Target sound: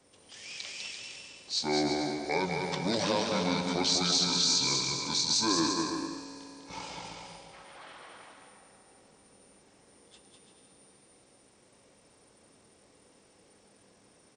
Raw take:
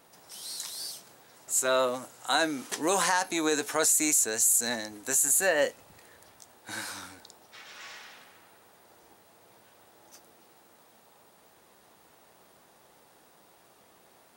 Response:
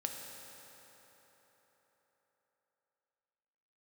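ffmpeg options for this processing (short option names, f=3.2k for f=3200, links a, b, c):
-filter_complex "[0:a]adynamicequalizer=threshold=0.00178:dfrequency=210:dqfactor=4.7:tfrequency=210:tqfactor=4.7:attack=5:release=100:ratio=0.375:range=1.5:mode=cutabove:tftype=bell,asetrate=25476,aresample=44100,atempo=1.73107,aecho=1:1:200|340|438|506.6|554.6:0.631|0.398|0.251|0.158|0.1,asplit=2[a][b];[1:a]atrim=start_sample=2205,highshelf=f=10k:g=11[c];[b][c]afir=irnorm=-1:irlink=0,volume=-1.5dB[d];[a][d]amix=inputs=2:normalize=0,volume=-9dB"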